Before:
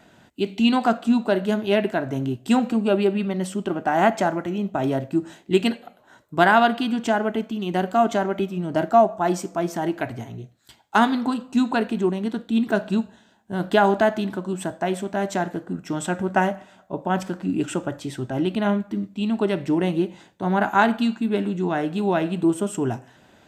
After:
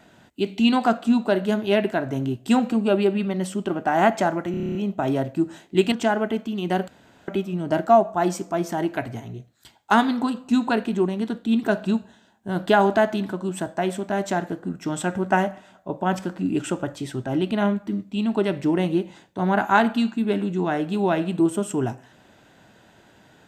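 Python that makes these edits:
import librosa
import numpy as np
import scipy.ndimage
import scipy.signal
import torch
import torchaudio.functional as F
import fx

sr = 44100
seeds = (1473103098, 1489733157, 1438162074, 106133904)

y = fx.edit(x, sr, fx.stutter(start_s=4.51, slice_s=0.03, count=9),
    fx.cut(start_s=5.68, length_s=1.28),
    fx.room_tone_fill(start_s=7.92, length_s=0.4), tone=tone)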